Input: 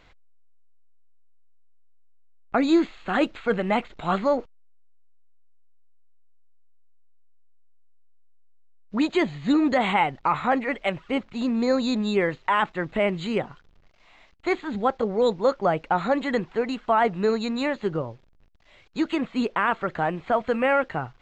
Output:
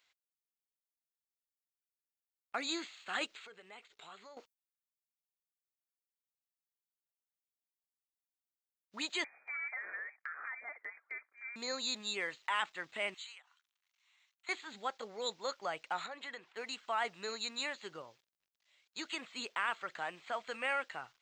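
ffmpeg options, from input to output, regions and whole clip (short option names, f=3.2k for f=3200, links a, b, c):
-filter_complex "[0:a]asettb=1/sr,asplit=3[a][b][c];[a]atrim=end=3.264[d];[b]atrim=start=3.26:end=4.37,asetpts=PTS-STARTPTS,afade=t=in:d=0.004:c=qsin,afade=t=out:st=1.106:d=0.004:c=qsin,equalizer=f=420:w=7.3:g=11.5,acompressor=threshold=-39dB:ratio=3:attack=3.2:release=140:knee=1:detection=peak[e];[c]atrim=start=4.366[f];[d][e]acrossfade=d=0.004:c1=hsin:c2=qsin[g];[g][f]acrossfade=d=0.004:c1=qsin:c2=hsin,asettb=1/sr,asplit=3[h][i][j];[h]atrim=end=9.244[k];[i]atrim=start=9.24:end=11.56,asetpts=PTS-STARTPTS,afade=t=in:d=0.004:c=qsin,afade=t=out:st=2.316:d=0.004:c=qsin,highpass=640,acompressor=threshold=-28dB:ratio=12:attack=3.2:release=140:knee=1:detection=peak,lowpass=f=2.2k:t=q:w=0.5098,lowpass=f=2.2k:t=q:w=0.6013,lowpass=f=2.2k:t=q:w=0.9,lowpass=f=2.2k:t=q:w=2.563,afreqshift=-2600[l];[j]atrim=start=11.556[m];[k][l]acrossfade=d=0.004:c1=hsin:c2=qsin[n];[n][m]acrossfade=d=0.004:c1=qsin:c2=hsin,asettb=1/sr,asplit=3[o][p][q];[o]atrim=end=13.144[r];[p]atrim=start=13.14:end=14.49,asetpts=PTS-STARTPTS,afade=t=in:d=0.004:c=qsin,afade=t=out:st=1.346:d=0.004:c=qsin,highpass=f=890:w=0.5412,highpass=f=890:w=1.3066,bandreject=f=4.9k:w=6.4,acompressor=threshold=-40dB:ratio=20:attack=3.2:release=140:knee=1:detection=peak[s];[q]atrim=start=14.486[t];[r][s]acrossfade=d=0.004:c1=hsin:c2=qsin[u];[u][t]acrossfade=d=0.004:c1=qsin:c2=hsin,asettb=1/sr,asplit=3[v][w][x];[v]atrim=end=16.064[y];[w]atrim=start=16.06:end=16.57,asetpts=PTS-STARTPTS,afade=t=in:d=0.004:c=qsin,afade=t=out:st=0.506:d=0.004:c=qsin,bass=f=250:g=-7,treble=f=4k:g=-10,acompressor=threshold=-31dB:ratio=2:attack=3.2:release=140:knee=1:detection=peak[z];[x]atrim=start=16.566[aa];[y][z]acrossfade=d=0.004:c1=hsin:c2=qsin[ab];[ab][aa]acrossfade=d=0.004:c1=qsin:c2=hsin,agate=range=-9dB:threshold=-44dB:ratio=16:detection=peak,aderivative,volume=3dB"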